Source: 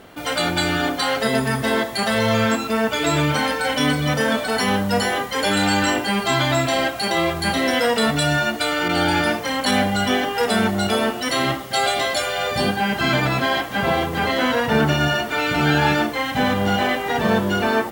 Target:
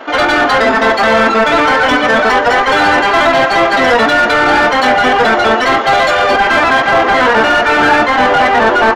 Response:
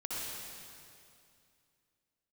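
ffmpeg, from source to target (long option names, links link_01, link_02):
-filter_complex "[0:a]afftfilt=real='re*between(b*sr/4096,210,7200)':imag='im*between(b*sr/4096,210,7200)':win_size=4096:overlap=0.75,atempo=2,acrossover=split=1700[link_01][link_02];[link_01]crystalizer=i=10:c=0[link_03];[link_03][link_02]amix=inputs=2:normalize=0,asplit=2[link_04][link_05];[link_05]adelay=330,highpass=300,lowpass=3400,asoftclip=type=hard:threshold=-14dB,volume=-15dB[link_06];[link_04][link_06]amix=inputs=2:normalize=0,asplit=2[link_07][link_08];[link_08]highpass=frequency=720:poles=1,volume=21dB,asoftclip=type=tanh:threshold=-4dB[link_09];[link_07][link_09]amix=inputs=2:normalize=0,lowpass=frequency=1400:poles=1,volume=-6dB,volume=4dB"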